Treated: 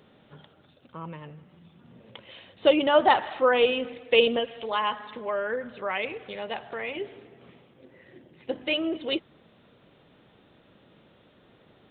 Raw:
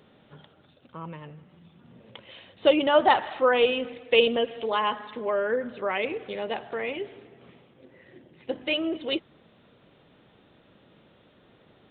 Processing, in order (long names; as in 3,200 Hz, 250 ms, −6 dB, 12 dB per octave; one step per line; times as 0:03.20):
0:04.39–0:06.95: dynamic equaliser 330 Hz, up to −7 dB, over −42 dBFS, Q 0.98